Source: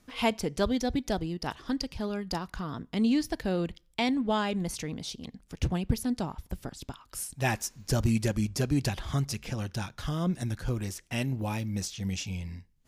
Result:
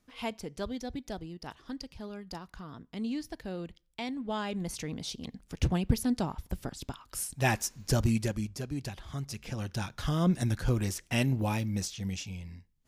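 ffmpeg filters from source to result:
ffmpeg -i in.wav -af "volume=13dB,afade=type=in:start_time=4.15:duration=1.15:silence=0.316228,afade=type=out:start_time=7.85:duration=0.75:silence=0.316228,afade=type=in:start_time=9.15:duration=1.13:silence=0.251189,afade=type=out:start_time=11.28:duration=1.07:silence=0.375837" out.wav

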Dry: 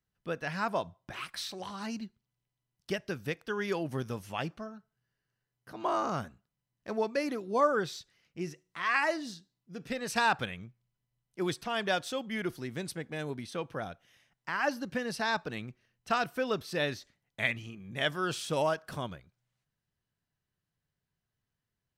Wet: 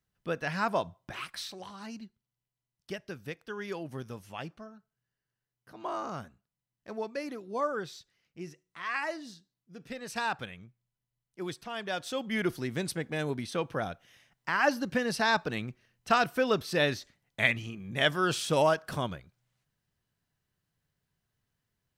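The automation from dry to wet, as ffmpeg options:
ffmpeg -i in.wav -af "volume=12dB,afade=type=out:start_time=0.97:duration=0.76:silence=0.421697,afade=type=in:start_time=11.91:duration=0.48:silence=0.334965" out.wav

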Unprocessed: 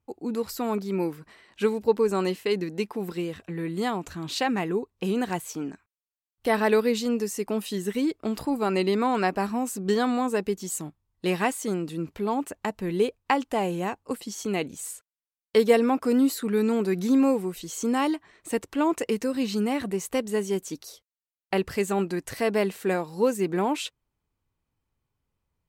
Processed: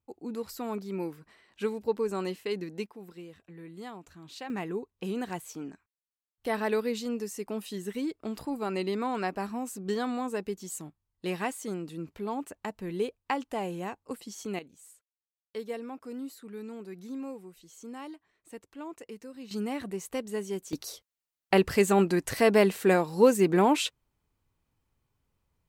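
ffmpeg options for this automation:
ffmpeg -i in.wav -af "asetnsamples=nb_out_samples=441:pad=0,asendcmd='2.86 volume volume -15dB;4.5 volume volume -7dB;14.59 volume volume -17.5dB;19.51 volume volume -7dB;20.73 volume volume 3dB',volume=-7dB" out.wav

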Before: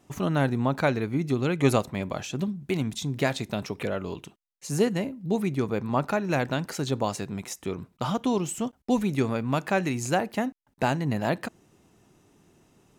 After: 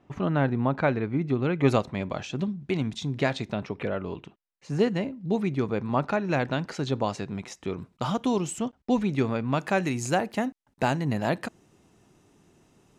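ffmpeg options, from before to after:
ffmpeg -i in.wav -af "asetnsamples=nb_out_samples=441:pad=0,asendcmd='1.68 lowpass f 4900;3.53 lowpass f 2800;4.79 lowpass f 4800;7.77 lowpass f 9400;8.59 lowpass f 4900;9.59 lowpass f 11000',lowpass=2600" out.wav

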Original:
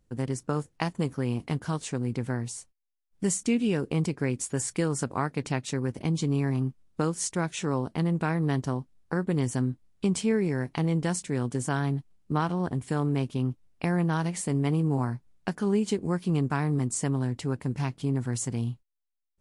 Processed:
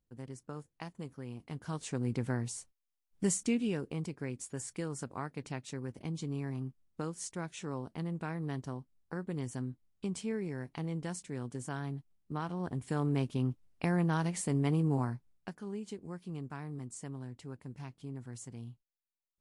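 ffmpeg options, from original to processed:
ffmpeg -i in.wav -af "volume=3.5dB,afade=type=in:start_time=1.46:duration=0.62:silence=0.266073,afade=type=out:start_time=3.26:duration=0.7:silence=0.421697,afade=type=in:start_time=12.39:duration=0.77:silence=0.446684,afade=type=out:start_time=14.94:duration=0.64:silence=0.266073" out.wav

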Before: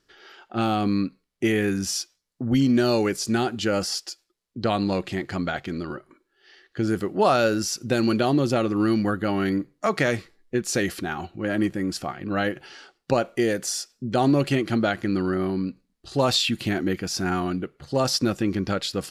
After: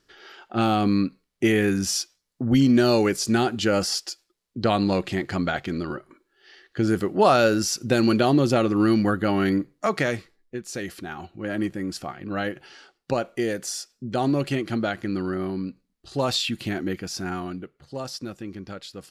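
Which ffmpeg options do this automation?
ffmpeg -i in.wav -af "volume=8.5dB,afade=type=out:start_time=9.53:duration=1.1:silence=0.266073,afade=type=in:start_time=10.63:duration=0.92:silence=0.473151,afade=type=out:start_time=16.92:duration=1.2:silence=0.375837" out.wav

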